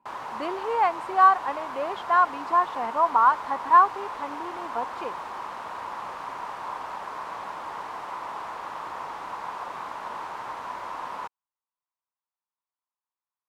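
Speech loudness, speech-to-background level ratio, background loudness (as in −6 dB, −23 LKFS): −23.0 LKFS, 12.5 dB, −35.5 LKFS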